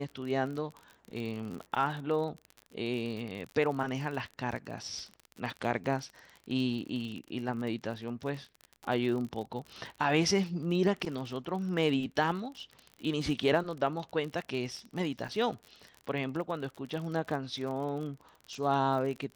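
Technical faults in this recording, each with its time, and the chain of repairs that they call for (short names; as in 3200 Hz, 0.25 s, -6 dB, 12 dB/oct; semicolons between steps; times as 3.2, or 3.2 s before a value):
crackle 44/s -37 dBFS
15.28–15.29 gap 6.5 ms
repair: de-click; interpolate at 15.28, 6.5 ms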